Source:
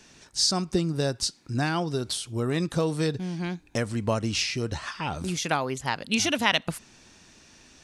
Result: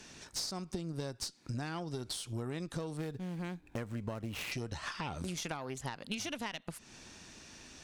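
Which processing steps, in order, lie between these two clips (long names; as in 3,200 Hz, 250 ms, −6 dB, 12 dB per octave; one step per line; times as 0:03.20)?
0:02.97–0:04.52: running median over 9 samples
downward compressor 20 to 1, threshold −36 dBFS, peak gain reduction 20.5 dB
tube saturation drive 30 dB, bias 0.6
level +3.5 dB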